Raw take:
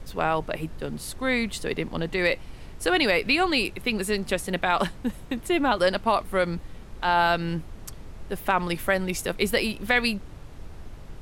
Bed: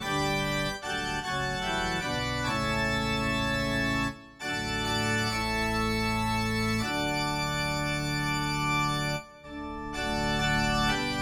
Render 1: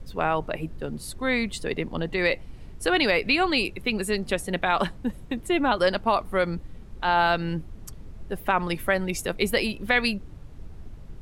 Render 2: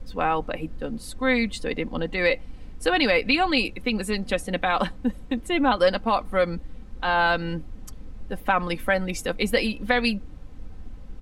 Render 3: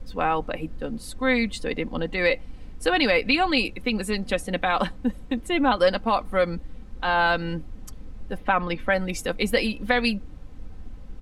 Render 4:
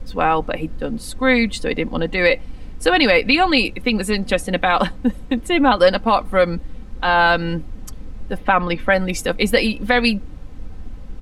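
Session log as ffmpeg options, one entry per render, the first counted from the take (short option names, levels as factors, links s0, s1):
-af "afftdn=nr=8:nf=-42"
-af "highshelf=f=11000:g=-10,aecho=1:1:3.9:0.55"
-filter_complex "[0:a]asplit=3[s0][s1][s2];[s0]afade=t=out:st=8.37:d=0.02[s3];[s1]lowpass=4300,afade=t=in:st=8.37:d=0.02,afade=t=out:st=8.91:d=0.02[s4];[s2]afade=t=in:st=8.91:d=0.02[s5];[s3][s4][s5]amix=inputs=3:normalize=0"
-af "volume=2.11,alimiter=limit=0.794:level=0:latency=1"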